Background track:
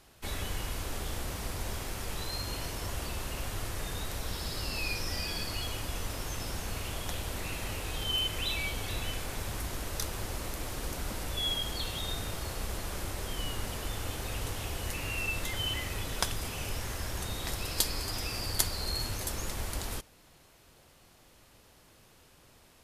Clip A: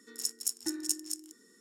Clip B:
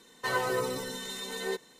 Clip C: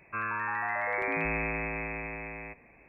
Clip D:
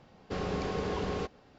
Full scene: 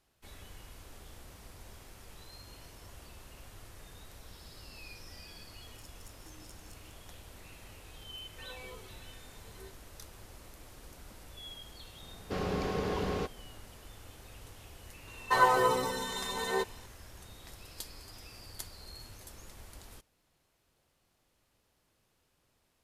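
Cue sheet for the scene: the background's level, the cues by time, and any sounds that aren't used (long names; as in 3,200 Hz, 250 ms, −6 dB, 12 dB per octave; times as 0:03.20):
background track −15 dB
0:05.60: mix in A −8.5 dB + downward compressor 3 to 1, threshold −50 dBFS
0:08.14: mix in B −18 dB + barber-pole flanger 2.6 ms −1.4 Hz
0:12.00: mix in D
0:15.07: mix in B −0.5 dB + parametric band 930 Hz +10.5 dB 0.93 octaves
not used: C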